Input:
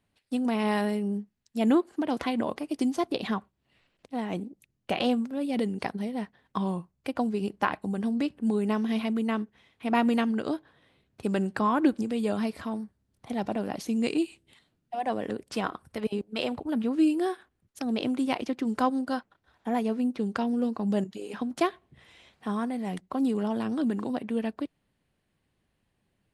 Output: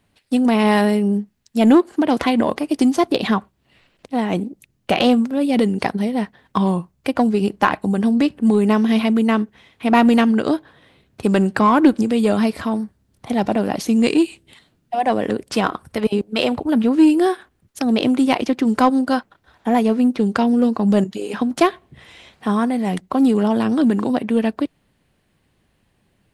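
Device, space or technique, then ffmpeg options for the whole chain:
parallel distortion: -filter_complex "[0:a]asplit=2[link_01][link_02];[link_02]asoftclip=type=hard:threshold=-22.5dB,volume=-6dB[link_03];[link_01][link_03]amix=inputs=2:normalize=0,volume=8dB"

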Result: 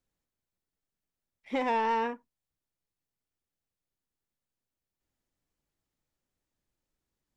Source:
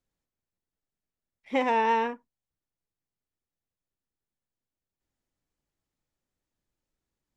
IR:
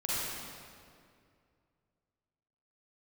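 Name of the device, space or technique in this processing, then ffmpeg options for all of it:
soft clipper into limiter: -af "asoftclip=type=tanh:threshold=-18.5dB,alimiter=limit=-22dB:level=0:latency=1:release=235"

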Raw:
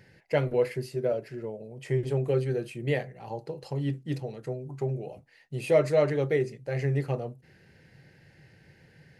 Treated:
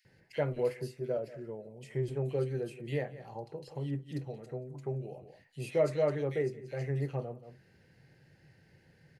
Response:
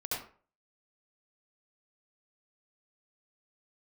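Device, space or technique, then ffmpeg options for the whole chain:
ducked delay: -filter_complex "[0:a]acrossover=split=2300[link_01][link_02];[link_01]adelay=50[link_03];[link_03][link_02]amix=inputs=2:normalize=0,asplit=3[link_04][link_05][link_06];[link_05]adelay=178,volume=-9dB[link_07];[link_06]apad=whole_len=415567[link_08];[link_07][link_08]sidechaincompress=threshold=-46dB:ratio=8:attack=7.5:release=128[link_09];[link_04][link_09]amix=inputs=2:normalize=0,volume=-6dB"

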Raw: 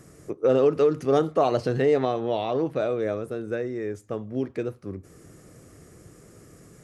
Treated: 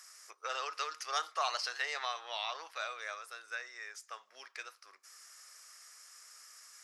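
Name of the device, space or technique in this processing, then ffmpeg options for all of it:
headphones lying on a table: -af "highpass=frequency=1100:width=0.5412,highpass=frequency=1100:width=1.3066,equalizer=frequency=5200:width_type=o:width=0.53:gain=11"

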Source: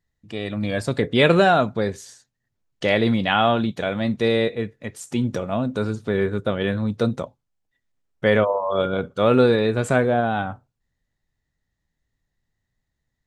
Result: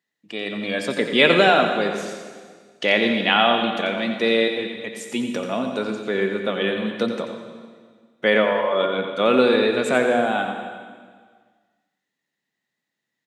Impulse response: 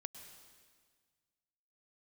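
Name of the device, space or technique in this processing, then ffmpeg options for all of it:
PA in a hall: -filter_complex "[0:a]highpass=frequency=200:width=0.5412,highpass=frequency=200:width=1.3066,equalizer=frequency=2700:width_type=o:width=1.2:gain=7,aecho=1:1:88:0.355[link_01];[1:a]atrim=start_sample=2205[link_02];[link_01][link_02]afir=irnorm=-1:irlink=0,volume=3.5dB"

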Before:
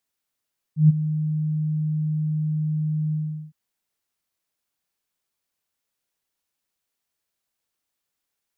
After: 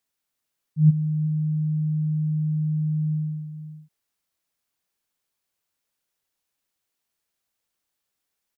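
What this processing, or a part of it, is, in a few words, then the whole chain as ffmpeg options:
ducked delay: -filter_complex "[0:a]asplit=3[link_01][link_02][link_03];[link_02]adelay=365,volume=-7dB[link_04];[link_03]apad=whole_len=394133[link_05];[link_04][link_05]sidechaincompress=threshold=-36dB:ratio=8:attack=16:release=515[link_06];[link_01][link_06]amix=inputs=2:normalize=0"

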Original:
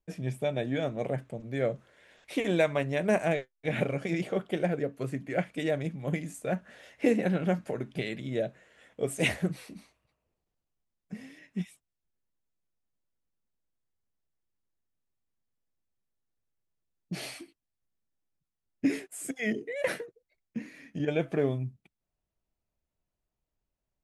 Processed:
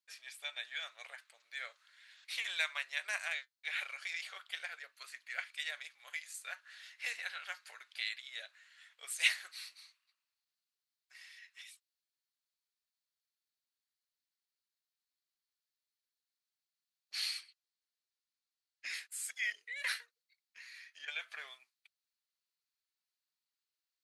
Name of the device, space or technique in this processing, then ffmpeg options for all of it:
headphones lying on a table: -filter_complex "[0:a]highpass=frequency=1300:width=0.5412,highpass=frequency=1300:width=1.3066,equalizer=frequency=4300:width_type=o:width=0.48:gain=11,asettb=1/sr,asplit=3[link_01][link_02][link_03];[link_01]atrim=end=17.404[link_04];[link_02]atrim=start=17.4:end=18.94,asetpts=PTS-STARTPTS,afade=type=in:duration=0.004:curve=qsin,afade=type=out:start_time=1.536:duration=0.004:curve=qsin,lowpass=9100[link_05];[link_03]atrim=start=18.936[link_06];[link_04][link_05]acrossfade=duration=0.004:curve1=hsin:curve2=qsin[link_07];[link_07][link_06]acrossfade=duration=0.004:curve1=qsin:curve2=hsin,volume=-1.5dB"

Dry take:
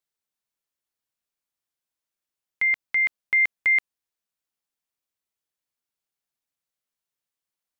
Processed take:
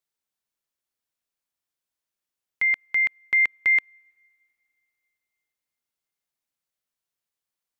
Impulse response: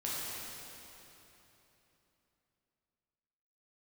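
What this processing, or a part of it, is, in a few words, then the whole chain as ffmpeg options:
keyed gated reverb: -filter_complex "[0:a]asplit=3[link_01][link_02][link_03];[1:a]atrim=start_sample=2205[link_04];[link_02][link_04]afir=irnorm=-1:irlink=0[link_05];[link_03]apad=whole_len=343554[link_06];[link_05][link_06]sidechaingate=range=-32dB:threshold=-16dB:ratio=16:detection=peak,volume=-8.5dB[link_07];[link_01][link_07]amix=inputs=2:normalize=0"

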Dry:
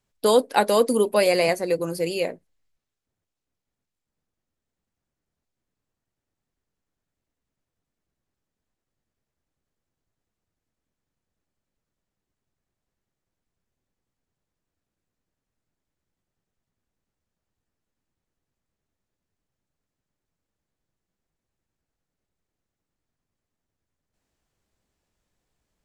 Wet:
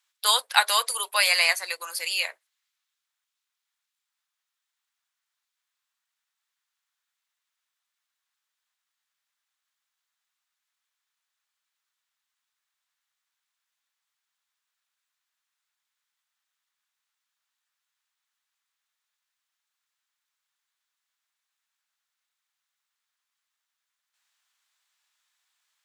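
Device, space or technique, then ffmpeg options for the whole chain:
headphones lying on a table: -af "highpass=frequency=1100:width=0.5412,highpass=frequency=1100:width=1.3066,equalizer=frequency=3600:width_type=o:width=0.45:gain=4.5,volume=6dB"

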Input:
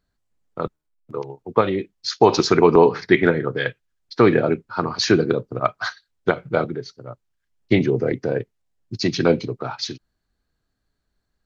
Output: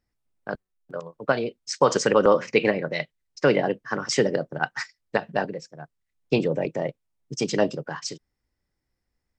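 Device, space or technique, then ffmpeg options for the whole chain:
nightcore: -af "asetrate=53802,aresample=44100,volume=-4.5dB"

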